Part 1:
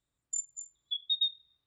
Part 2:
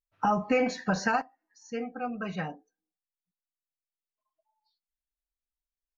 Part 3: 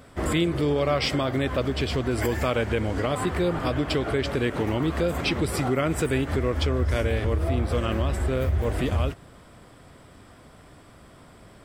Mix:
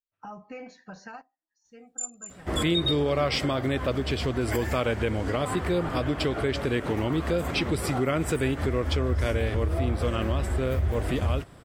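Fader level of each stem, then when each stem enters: +1.0, −16.0, −1.5 decibels; 1.65, 0.00, 2.30 seconds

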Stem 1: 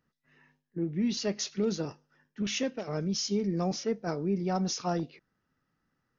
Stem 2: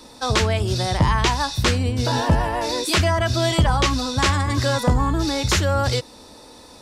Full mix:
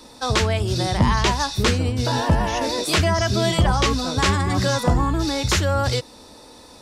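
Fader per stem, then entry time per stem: +1.5, −0.5 decibels; 0.00, 0.00 seconds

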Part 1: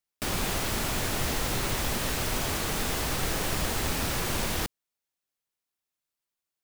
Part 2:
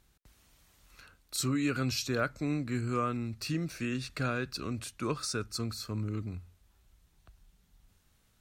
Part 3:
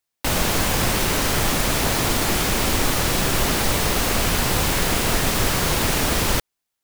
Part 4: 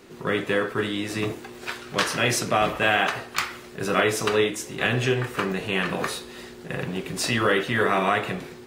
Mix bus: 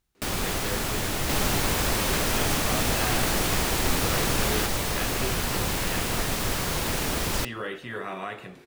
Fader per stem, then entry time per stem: +1.0, −10.5, −7.0, −12.5 decibels; 0.00, 0.00, 1.05, 0.15 seconds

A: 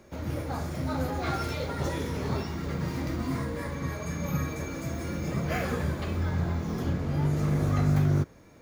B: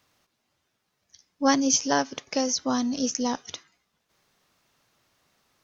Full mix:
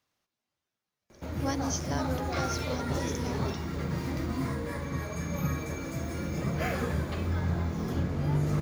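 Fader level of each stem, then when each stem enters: −1.0, −12.5 decibels; 1.10, 0.00 seconds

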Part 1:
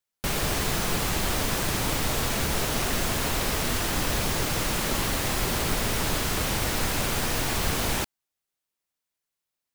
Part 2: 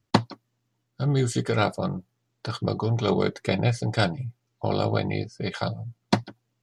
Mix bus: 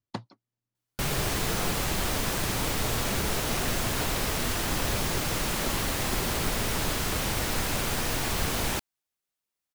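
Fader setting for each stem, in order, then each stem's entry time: −2.0, −16.0 decibels; 0.75, 0.00 seconds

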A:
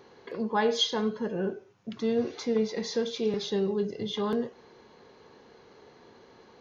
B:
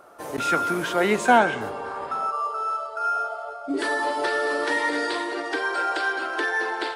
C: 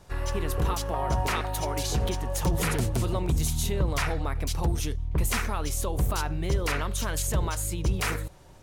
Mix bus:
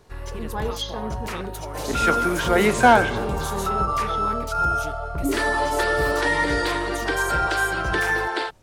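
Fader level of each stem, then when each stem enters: −4.0, +2.5, −4.0 decibels; 0.00, 1.55, 0.00 seconds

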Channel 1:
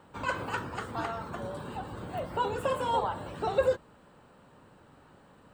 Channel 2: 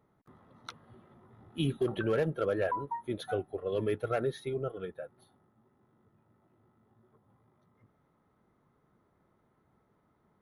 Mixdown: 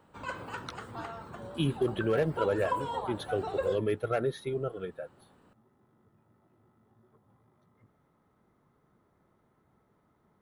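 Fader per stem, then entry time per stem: −6.5, +1.5 decibels; 0.00, 0.00 seconds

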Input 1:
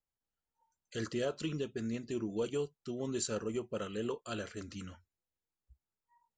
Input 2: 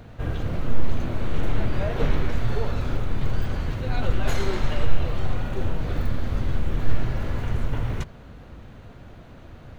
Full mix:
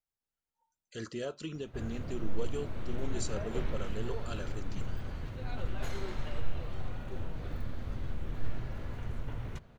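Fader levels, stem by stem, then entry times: −3.0, −12.5 decibels; 0.00, 1.55 seconds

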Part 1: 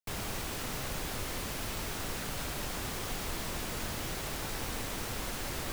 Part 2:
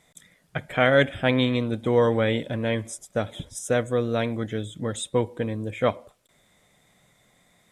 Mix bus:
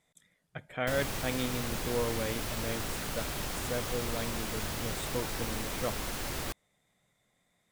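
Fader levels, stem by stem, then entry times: +1.0, −12.5 decibels; 0.80, 0.00 seconds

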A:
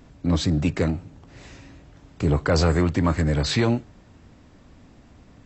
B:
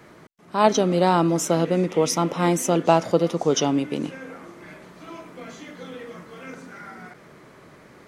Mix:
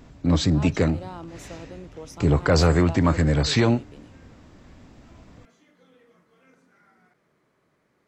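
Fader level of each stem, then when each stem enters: +1.5, −20.0 decibels; 0.00, 0.00 seconds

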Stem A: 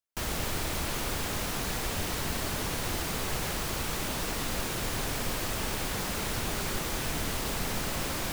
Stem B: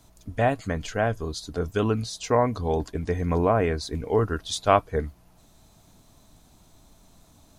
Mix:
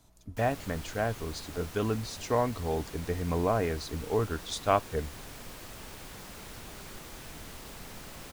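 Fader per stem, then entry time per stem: −13.0, −6.0 decibels; 0.20, 0.00 seconds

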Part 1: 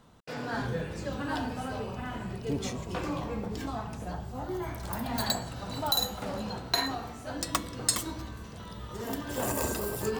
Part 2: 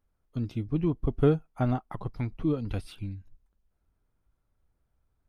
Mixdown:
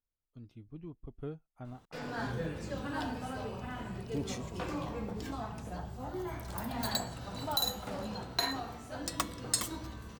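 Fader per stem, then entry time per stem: −4.0, −19.0 decibels; 1.65, 0.00 seconds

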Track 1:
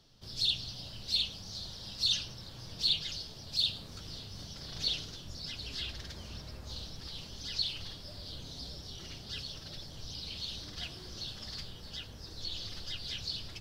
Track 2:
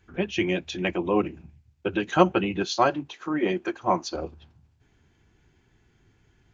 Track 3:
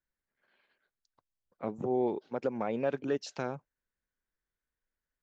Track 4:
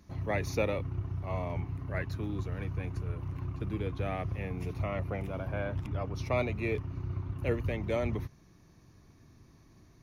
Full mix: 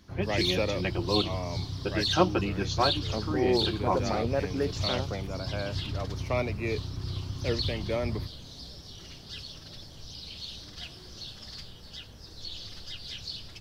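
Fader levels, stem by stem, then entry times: −0.5, −5.0, +1.5, +1.0 decibels; 0.00, 0.00, 1.50, 0.00 seconds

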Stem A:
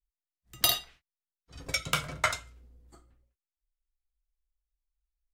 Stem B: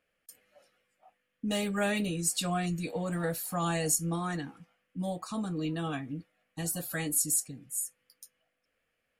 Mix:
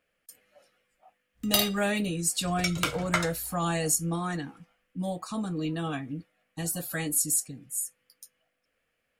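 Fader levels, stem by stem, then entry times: 0.0, +2.0 decibels; 0.90, 0.00 seconds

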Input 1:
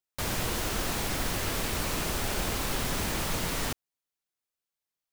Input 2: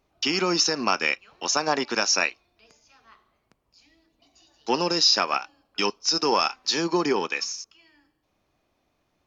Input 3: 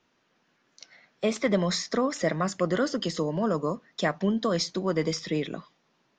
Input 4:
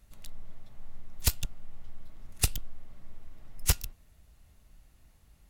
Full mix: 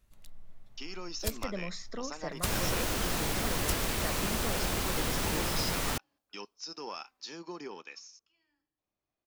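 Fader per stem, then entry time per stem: −1.0, −19.0, −14.0, −8.0 decibels; 2.25, 0.55, 0.00, 0.00 seconds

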